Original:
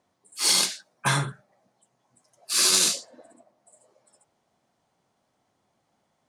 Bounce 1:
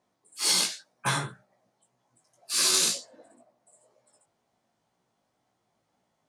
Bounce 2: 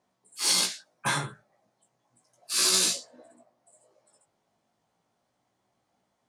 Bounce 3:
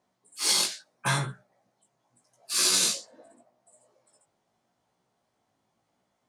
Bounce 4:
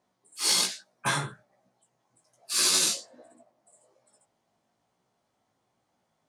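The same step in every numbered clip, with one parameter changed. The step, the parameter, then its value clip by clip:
chorus, rate: 2, 0.34, 0.81, 1.2 Hz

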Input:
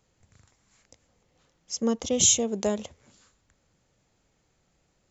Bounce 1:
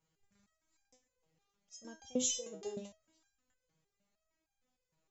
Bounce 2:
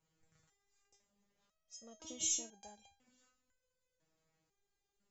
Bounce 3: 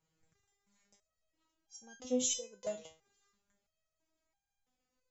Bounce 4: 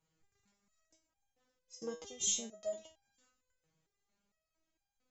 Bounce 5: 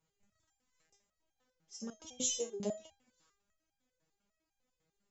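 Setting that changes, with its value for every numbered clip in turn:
stepped resonator, rate: 6.5, 2, 3, 4.4, 10 Hz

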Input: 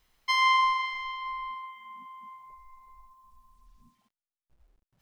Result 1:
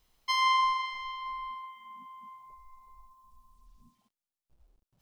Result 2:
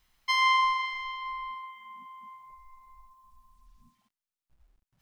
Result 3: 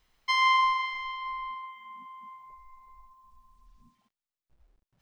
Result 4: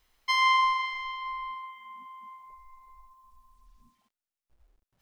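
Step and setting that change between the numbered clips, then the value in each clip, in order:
bell, frequency: 1800, 450, 13000, 150 Hz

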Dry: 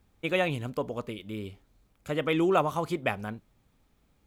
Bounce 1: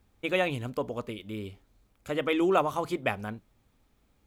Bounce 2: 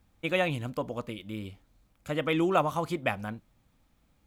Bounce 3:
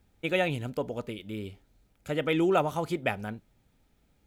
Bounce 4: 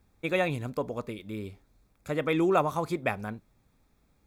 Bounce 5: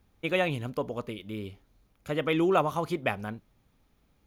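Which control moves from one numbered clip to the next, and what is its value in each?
notch, frequency: 160, 410, 1100, 3000, 7800 Hz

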